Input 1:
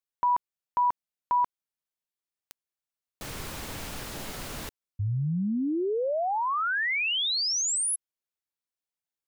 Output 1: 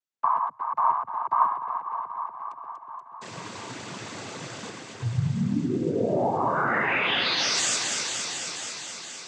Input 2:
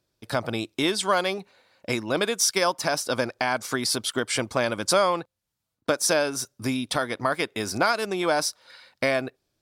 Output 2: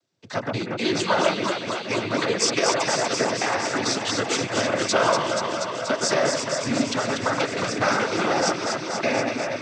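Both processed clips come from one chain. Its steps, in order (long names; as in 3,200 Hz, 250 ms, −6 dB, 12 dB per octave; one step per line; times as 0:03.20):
delay that swaps between a low-pass and a high-pass 120 ms, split 2,200 Hz, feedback 88%, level −3 dB
cochlear-implant simulation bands 16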